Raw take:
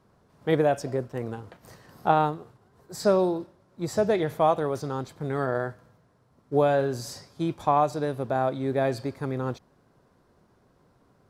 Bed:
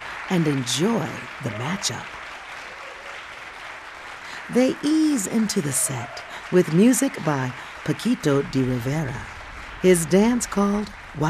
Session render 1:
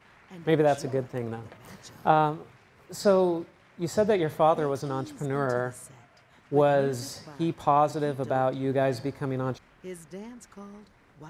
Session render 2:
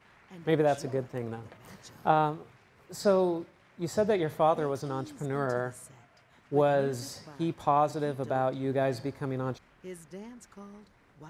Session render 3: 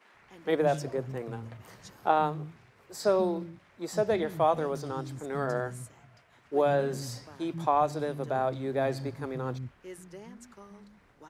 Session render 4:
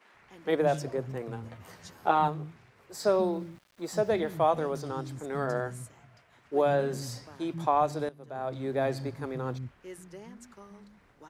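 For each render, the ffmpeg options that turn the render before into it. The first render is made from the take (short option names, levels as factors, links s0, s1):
-filter_complex "[1:a]volume=0.0631[s0];[0:a][s0]amix=inputs=2:normalize=0"
-af "volume=0.708"
-filter_complex "[0:a]acrossover=split=220[s0][s1];[s0]adelay=140[s2];[s2][s1]amix=inputs=2:normalize=0"
-filter_complex "[0:a]asettb=1/sr,asplit=3[s0][s1][s2];[s0]atrim=end=1.434[s3];[s1]atrim=start=1.43:end=2.28,asetpts=PTS-STARTPTS,afade=t=in:d=0.004:c=qsin,afade=t=out:st=0.846:d=0.004:c=qsin,asplit=2[s4][s5];[s5]adelay=12,volume=0.596[s6];[s4][s6]amix=inputs=2:normalize=0,atrim=end_sample=37485[s7];[s2]atrim=start=2.276[s8];[s3][s7]acrossfade=d=0.004:c1=hsin:c2=qsin[s9];[s9][s8]acrossfade=d=0.004:c1=qsin:c2=hsin,asettb=1/sr,asplit=3[s10][s11][s12];[s10]atrim=end=2.954[s13];[s11]atrim=start=2.95:end=4.33,asetpts=PTS-STARTPTS,afade=t=in:d=0.004:c=qsin,afade=t=out:st=1.376:d=0.004:c=qsin,aeval=exprs='val(0)*gte(abs(val(0)),0.00188)':c=same[s14];[s12]atrim=start=4.326[s15];[s13][s14]acrossfade=d=0.004:c1=hsin:c2=qsin[s16];[s16][s15]acrossfade=d=0.004:c1=qsin:c2=hsin,asplit=2[s17][s18];[s17]atrim=end=8.09,asetpts=PTS-STARTPTS,afade=t=out:st=8.086:d=0.004:c=hsin:silence=0.149624[s19];[s18]atrim=start=8.09,asetpts=PTS-STARTPTS,afade=t=in:d=0.53:c=qua:silence=0.149624[s20];[s19][s20]concat=n=2:v=0:a=1"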